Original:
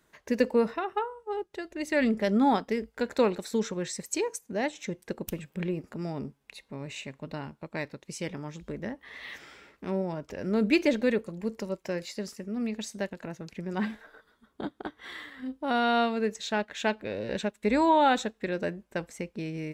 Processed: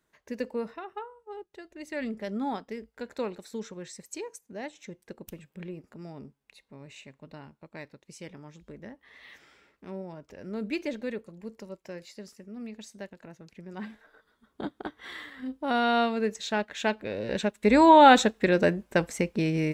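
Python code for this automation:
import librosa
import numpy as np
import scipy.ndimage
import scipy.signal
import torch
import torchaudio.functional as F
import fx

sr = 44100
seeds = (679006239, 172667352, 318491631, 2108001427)

y = fx.gain(x, sr, db=fx.line((13.89, -8.5), (14.65, 0.5), (17.15, 0.5), (18.17, 8.5)))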